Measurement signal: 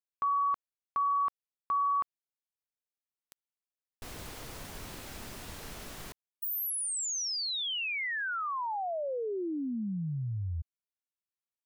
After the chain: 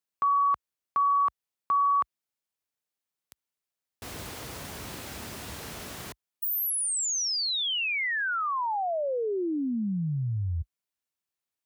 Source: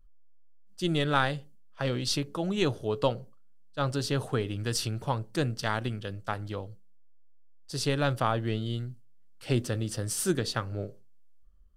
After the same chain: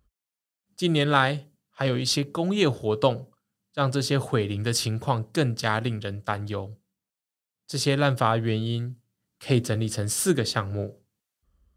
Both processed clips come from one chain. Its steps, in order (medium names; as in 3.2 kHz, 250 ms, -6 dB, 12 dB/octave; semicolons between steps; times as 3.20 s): high-pass 55 Hz 24 dB/octave; trim +5 dB